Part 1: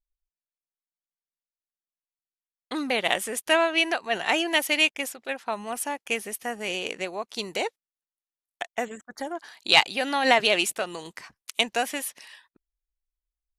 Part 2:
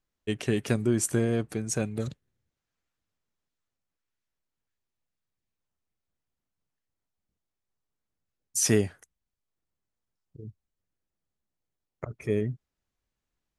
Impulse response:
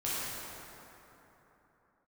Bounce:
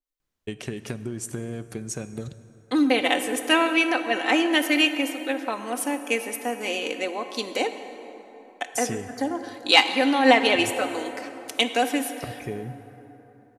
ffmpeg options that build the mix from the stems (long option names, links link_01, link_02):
-filter_complex "[0:a]lowshelf=frequency=190:width_type=q:width=3:gain=-13.5,aecho=1:1:3.9:0.54,adynamicequalizer=threshold=0.02:dfrequency=3100:dqfactor=0.7:tfrequency=3100:tqfactor=0.7:attack=5:release=100:ratio=0.375:range=2.5:mode=cutabove:tftype=highshelf,volume=-1dB,asplit=2[link_01][link_02];[link_02]volume=-14dB[link_03];[1:a]acompressor=threshold=-31dB:ratio=6,adelay=200,volume=1.5dB,asplit=2[link_04][link_05];[link_05]volume=-19.5dB[link_06];[2:a]atrim=start_sample=2205[link_07];[link_03][link_06]amix=inputs=2:normalize=0[link_08];[link_08][link_07]afir=irnorm=-1:irlink=0[link_09];[link_01][link_04][link_09]amix=inputs=3:normalize=0"